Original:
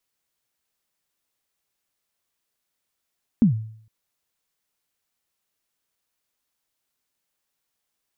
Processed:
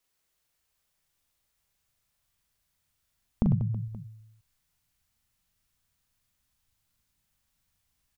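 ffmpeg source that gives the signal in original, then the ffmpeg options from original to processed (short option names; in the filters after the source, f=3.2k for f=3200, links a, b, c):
-f lavfi -i "aevalsrc='0.335*pow(10,-3*t/0.6)*sin(2*PI*(250*0.114/log(110/250)*(exp(log(110/250)*min(t,0.114)/0.114)-1)+110*max(t-0.114,0)))':d=0.46:s=44100"
-af "asubboost=boost=11.5:cutoff=120,acompressor=threshold=-24dB:ratio=6,aecho=1:1:40|100|190|325|527.5:0.631|0.398|0.251|0.158|0.1"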